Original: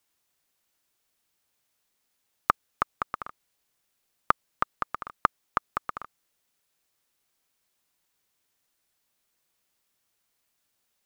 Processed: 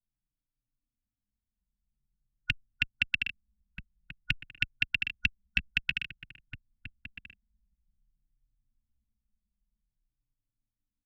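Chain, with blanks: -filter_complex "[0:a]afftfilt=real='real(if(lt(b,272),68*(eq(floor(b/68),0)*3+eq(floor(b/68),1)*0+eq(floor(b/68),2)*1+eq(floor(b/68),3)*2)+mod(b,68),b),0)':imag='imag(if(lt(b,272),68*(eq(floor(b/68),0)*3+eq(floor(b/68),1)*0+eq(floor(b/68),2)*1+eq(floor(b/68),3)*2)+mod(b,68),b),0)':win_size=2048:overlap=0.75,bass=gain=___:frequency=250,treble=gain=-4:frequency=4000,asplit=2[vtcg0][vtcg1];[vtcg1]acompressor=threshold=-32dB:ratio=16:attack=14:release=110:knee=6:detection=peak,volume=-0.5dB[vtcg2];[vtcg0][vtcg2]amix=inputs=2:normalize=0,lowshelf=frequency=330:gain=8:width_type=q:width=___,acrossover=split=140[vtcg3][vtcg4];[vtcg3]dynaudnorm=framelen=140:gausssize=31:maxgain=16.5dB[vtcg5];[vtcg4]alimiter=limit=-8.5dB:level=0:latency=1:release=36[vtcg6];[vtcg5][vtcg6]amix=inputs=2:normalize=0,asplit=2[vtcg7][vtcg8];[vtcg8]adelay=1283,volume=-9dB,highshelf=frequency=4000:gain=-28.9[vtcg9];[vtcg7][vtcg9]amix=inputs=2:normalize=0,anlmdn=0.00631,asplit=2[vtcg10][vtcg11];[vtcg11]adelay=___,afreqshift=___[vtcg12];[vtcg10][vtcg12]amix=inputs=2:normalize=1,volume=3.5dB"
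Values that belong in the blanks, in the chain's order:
0, 3, 2.7, -0.51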